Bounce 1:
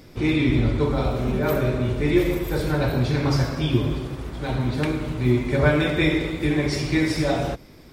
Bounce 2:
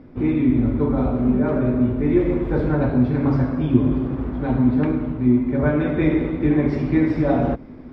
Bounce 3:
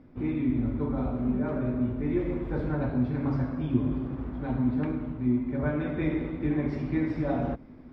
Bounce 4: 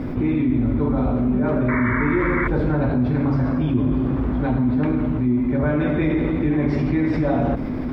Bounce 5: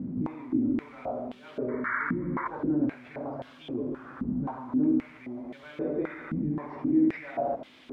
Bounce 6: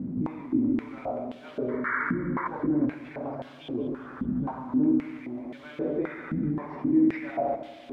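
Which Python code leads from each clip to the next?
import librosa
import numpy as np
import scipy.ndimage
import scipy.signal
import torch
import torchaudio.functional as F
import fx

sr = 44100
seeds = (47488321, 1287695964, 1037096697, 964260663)

y1 = scipy.signal.sosfilt(scipy.signal.butter(2, 1400.0, 'lowpass', fs=sr, output='sos'), x)
y1 = fx.peak_eq(y1, sr, hz=250.0, db=12.0, octaves=0.31)
y1 = fx.rider(y1, sr, range_db=5, speed_s=0.5)
y2 = fx.peak_eq(y1, sr, hz=420.0, db=-3.0, octaves=0.78)
y2 = F.gain(torch.from_numpy(y2), -8.5).numpy()
y3 = fx.spec_paint(y2, sr, seeds[0], shape='noise', start_s=1.68, length_s=0.8, low_hz=890.0, high_hz=2300.0, level_db=-35.0)
y3 = fx.env_flatten(y3, sr, amount_pct=70)
y3 = F.gain(torch.from_numpy(y3), 3.0).numpy()
y4 = fx.dmg_noise_colour(y3, sr, seeds[1], colour='pink', level_db=-48.0)
y4 = np.clip(y4, -10.0 ** (-11.0 / 20.0), 10.0 ** (-11.0 / 20.0))
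y4 = fx.filter_held_bandpass(y4, sr, hz=3.8, low_hz=200.0, high_hz=3200.0)
y5 = fx.echo_feedback(y4, sr, ms=191, feedback_pct=49, wet_db=-17.0)
y5 = F.gain(torch.from_numpy(y5), 1.5).numpy()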